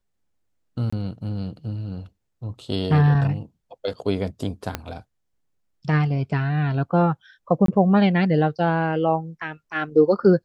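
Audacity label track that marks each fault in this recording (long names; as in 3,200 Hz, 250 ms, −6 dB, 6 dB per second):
0.900000	0.930000	drop-out 25 ms
4.750000	4.750000	click −10 dBFS
7.660000	7.680000	drop-out 23 ms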